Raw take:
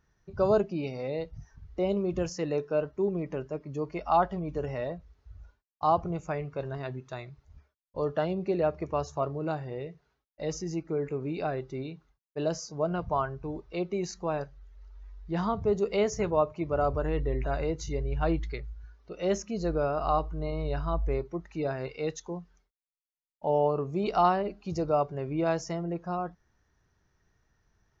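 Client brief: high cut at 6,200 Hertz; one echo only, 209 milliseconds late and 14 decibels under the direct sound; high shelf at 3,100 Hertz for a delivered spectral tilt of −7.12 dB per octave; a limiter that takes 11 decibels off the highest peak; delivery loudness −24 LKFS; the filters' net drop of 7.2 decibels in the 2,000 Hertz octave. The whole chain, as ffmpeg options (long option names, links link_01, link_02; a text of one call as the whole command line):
ffmpeg -i in.wav -af "lowpass=6200,equalizer=frequency=2000:width_type=o:gain=-7,highshelf=frequency=3100:gain=-9,alimiter=level_in=1dB:limit=-24dB:level=0:latency=1,volume=-1dB,aecho=1:1:209:0.2,volume=11dB" out.wav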